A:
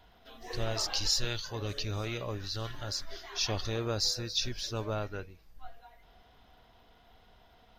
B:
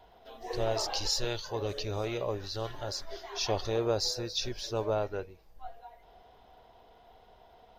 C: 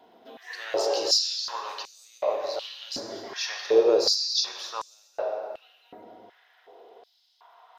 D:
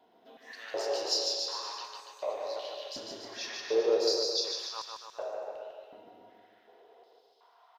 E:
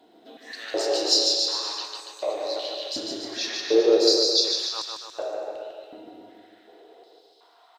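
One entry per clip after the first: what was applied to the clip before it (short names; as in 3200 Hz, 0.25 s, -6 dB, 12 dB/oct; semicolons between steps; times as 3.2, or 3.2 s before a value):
band shelf 590 Hz +8.5 dB; gain -2 dB
reverb RT60 2.5 s, pre-delay 18 ms, DRR 2 dB; stepped high-pass 2.7 Hz 250–7600 Hz
bouncing-ball echo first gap 0.15 s, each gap 0.9×, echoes 5; gain -8.5 dB
thirty-one-band EQ 315 Hz +12 dB, 1000 Hz -6 dB, 4000 Hz +8 dB, 8000 Hz +10 dB; gain +6.5 dB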